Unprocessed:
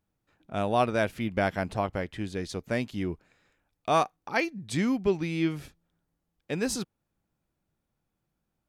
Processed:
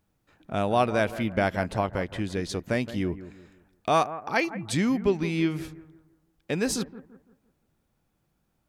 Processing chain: in parallel at +2 dB: compression, threshold -38 dBFS, peak gain reduction 18 dB; on the sum: bucket-brigade echo 169 ms, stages 2048, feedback 37%, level -14 dB

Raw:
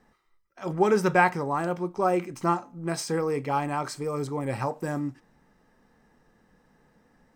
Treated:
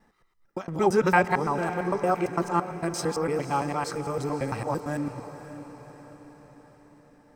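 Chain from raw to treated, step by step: time reversed locally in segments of 113 ms; echo that smears into a reverb 543 ms, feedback 53%, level -12 dB; on a send at -21.5 dB: reverberation RT60 0.65 s, pre-delay 9 ms

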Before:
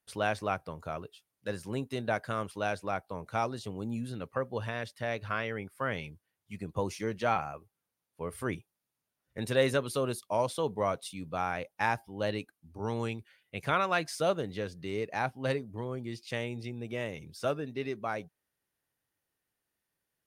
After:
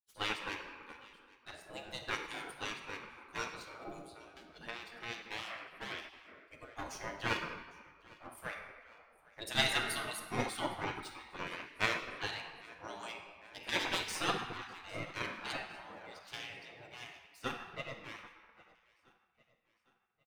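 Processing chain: expander on every frequency bin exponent 1.5; 1.94–2.62 s: treble shelf 4.7 kHz +6 dB; power-law waveshaper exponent 1.4; 3.93–4.61 s: Chebyshev band-stop 130–4000 Hz, order 2; hum notches 60/120/180 Hz; feedback delay 805 ms, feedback 49%, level -23.5 dB; simulated room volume 1600 m³, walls mixed, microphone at 1.4 m; spectral gate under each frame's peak -15 dB weak; 10.84–11.47 s: peaking EQ 11 kHz -11.5 dB 1.2 oct; trim +10 dB

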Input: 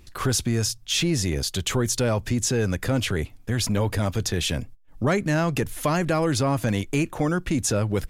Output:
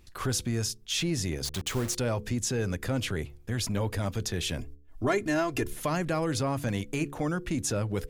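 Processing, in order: 1.45–1.95 s: send-on-delta sampling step -28.5 dBFS; de-hum 71.17 Hz, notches 7; 4.58–5.73 s: comb 2.9 ms, depth 82%; trim -6 dB

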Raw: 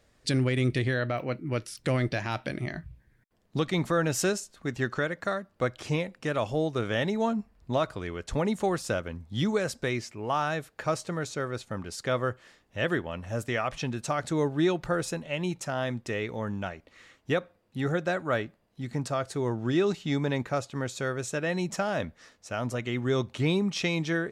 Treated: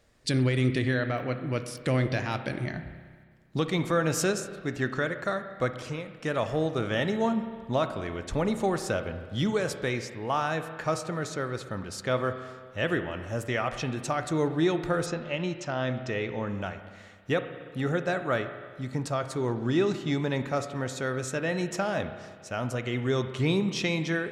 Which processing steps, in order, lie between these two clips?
5.76–6.16 s: compression 1.5:1, threshold -44 dBFS, peak gain reduction 7.5 dB; 15.06–16.49 s: low-pass 6.4 kHz 24 dB/octave; reverberation RT60 1.7 s, pre-delay 31 ms, DRR 8.5 dB

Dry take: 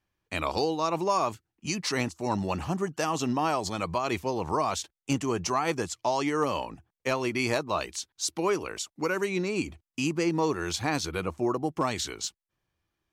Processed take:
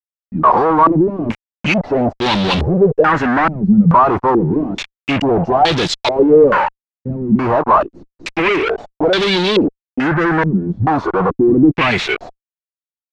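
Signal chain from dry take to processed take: spectral noise reduction 26 dB; fuzz box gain 49 dB, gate -46 dBFS; step-sequenced low-pass 2.3 Hz 200–3700 Hz; trim -1.5 dB

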